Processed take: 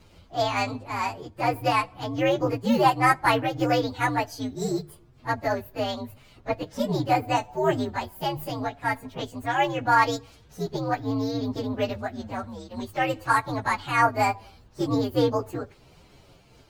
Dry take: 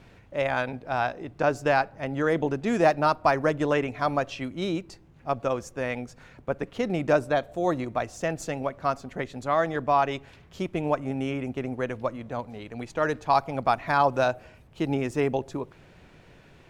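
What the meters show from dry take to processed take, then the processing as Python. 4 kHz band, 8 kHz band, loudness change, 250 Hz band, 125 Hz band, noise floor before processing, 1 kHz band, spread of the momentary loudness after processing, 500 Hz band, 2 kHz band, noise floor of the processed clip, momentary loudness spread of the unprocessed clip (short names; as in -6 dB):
+6.0 dB, +4.0 dB, +1.0 dB, +1.5 dB, +2.0 dB, -54 dBFS, +2.5 dB, 13 LU, -1.5 dB, +2.5 dB, -55 dBFS, 12 LU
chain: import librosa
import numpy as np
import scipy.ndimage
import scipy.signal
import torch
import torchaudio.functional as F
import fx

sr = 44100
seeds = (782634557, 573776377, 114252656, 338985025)

y = fx.partial_stretch(x, sr, pct=125)
y = fx.hum_notches(y, sr, base_hz=50, count=3)
y = fx.am_noise(y, sr, seeds[0], hz=5.7, depth_pct=60)
y = y * 10.0 ** (6.5 / 20.0)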